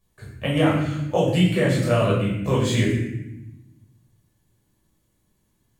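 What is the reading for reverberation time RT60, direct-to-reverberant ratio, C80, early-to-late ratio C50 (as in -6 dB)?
0.90 s, -6.0 dB, 5.0 dB, 2.0 dB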